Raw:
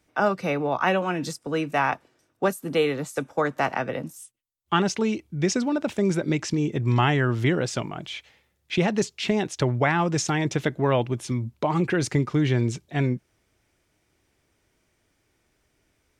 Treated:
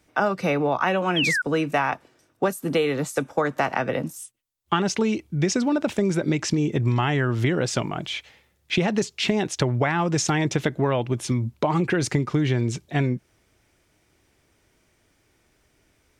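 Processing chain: compression, threshold -23 dBFS, peak gain reduction 8 dB; painted sound fall, 1.16–1.42 s, 1.4–3.4 kHz -28 dBFS; trim +5 dB

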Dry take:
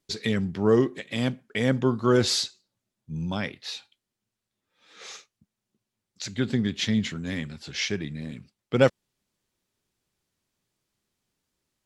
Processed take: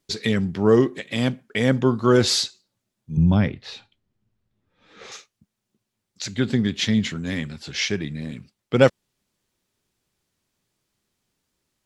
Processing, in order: 3.17–5.12 s: RIAA curve playback; trim +4 dB

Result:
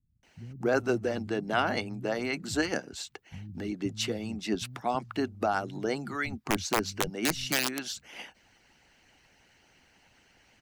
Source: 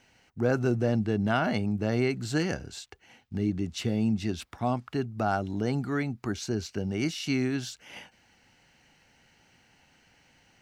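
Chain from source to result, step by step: 6.16–7.56 s: integer overflow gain 20 dB; harmonic-percussive split harmonic -14 dB; bands offset in time lows, highs 230 ms, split 160 Hz; trim +4.5 dB

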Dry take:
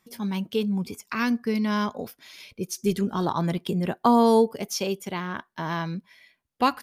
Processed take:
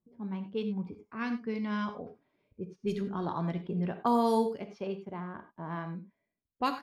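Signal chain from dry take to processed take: level-controlled noise filter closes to 410 Hz, open at -16 dBFS; gated-style reverb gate 120 ms flat, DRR 7.5 dB; trim -8.5 dB

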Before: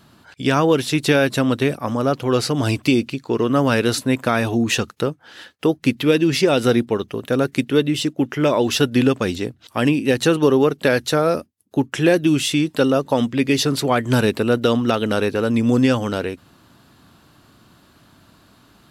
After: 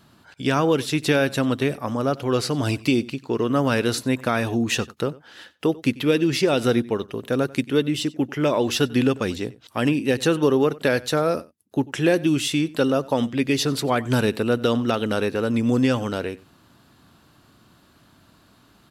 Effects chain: echo from a far wall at 16 m, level -21 dB; trim -3.5 dB

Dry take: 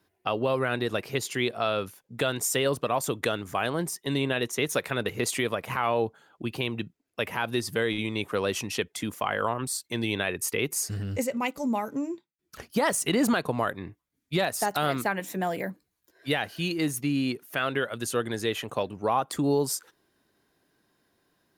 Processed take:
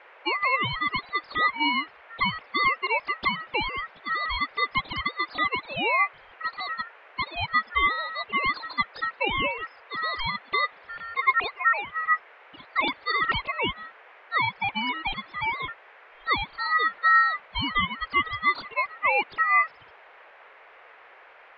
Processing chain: formants replaced by sine waves; ring modulator 1.6 kHz; band noise 440–2300 Hz -56 dBFS; trim +4.5 dB

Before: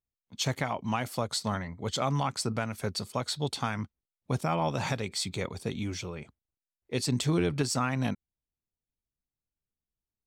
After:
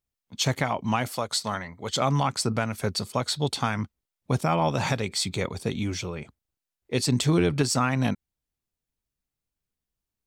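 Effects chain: 1.12–1.96 s: bass shelf 370 Hz -9.5 dB; trim +5 dB

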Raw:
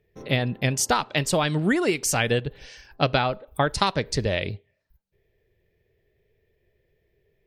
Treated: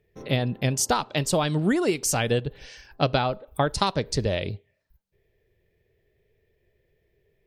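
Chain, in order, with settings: dynamic bell 2 kHz, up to -6 dB, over -40 dBFS, Q 1.2

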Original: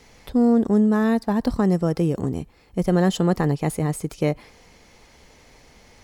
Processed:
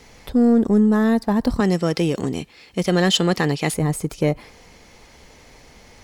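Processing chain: 1.60–3.74 s: frequency weighting D; in parallel at -5 dB: saturation -20.5 dBFS, distortion -9 dB

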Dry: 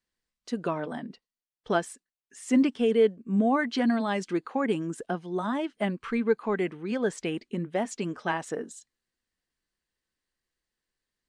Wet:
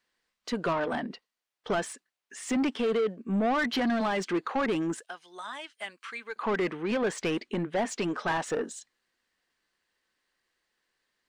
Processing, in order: 4.99–6.36 s: differentiator; peak limiter -20.5 dBFS, peak gain reduction 8 dB; overdrive pedal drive 18 dB, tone 2.8 kHz, clips at -20.5 dBFS

